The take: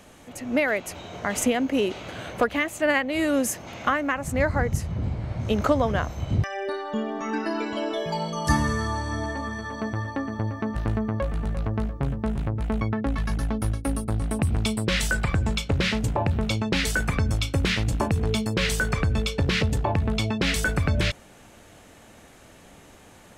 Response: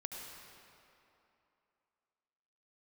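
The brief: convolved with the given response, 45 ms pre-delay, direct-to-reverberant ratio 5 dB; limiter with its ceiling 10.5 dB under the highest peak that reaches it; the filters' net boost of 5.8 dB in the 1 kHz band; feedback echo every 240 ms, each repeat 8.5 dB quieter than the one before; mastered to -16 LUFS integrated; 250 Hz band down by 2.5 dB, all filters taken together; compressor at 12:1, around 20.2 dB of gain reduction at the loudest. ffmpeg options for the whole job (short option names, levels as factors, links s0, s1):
-filter_complex "[0:a]equalizer=f=250:t=o:g=-3.5,equalizer=f=1000:t=o:g=7.5,acompressor=threshold=0.0178:ratio=12,alimiter=level_in=1.88:limit=0.0631:level=0:latency=1,volume=0.531,aecho=1:1:240|480|720|960:0.376|0.143|0.0543|0.0206,asplit=2[s0][s1];[1:a]atrim=start_sample=2205,adelay=45[s2];[s1][s2]afir=irnorm=-1:irlink=0,volume=0.631[s3];[s0][s3]amix=inputs=2:normalize=0,volume=14.1"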